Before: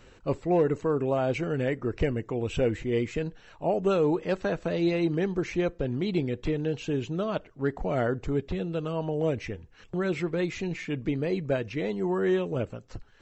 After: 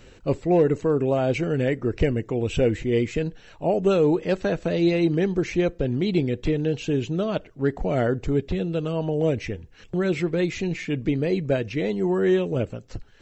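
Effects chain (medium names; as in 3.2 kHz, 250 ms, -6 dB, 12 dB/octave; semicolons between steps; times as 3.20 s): peaking EQ 1.1 kHz -6 dB 1.1 oct; trim +5.5 dB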